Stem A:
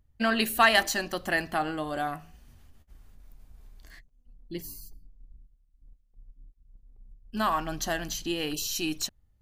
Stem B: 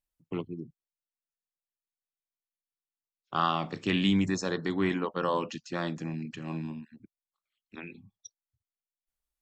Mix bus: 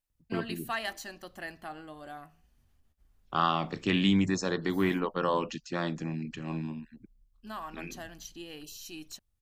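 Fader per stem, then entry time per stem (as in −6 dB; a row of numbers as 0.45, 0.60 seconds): −13.5, +0.5 decibels; 0.10, 0.00 seconds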